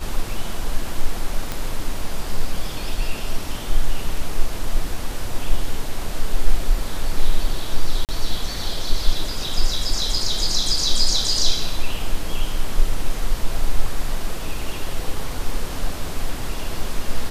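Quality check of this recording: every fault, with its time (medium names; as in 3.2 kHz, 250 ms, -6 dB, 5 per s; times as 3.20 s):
1.52 s: pop
8.05–8.09 s: dropout 38 ms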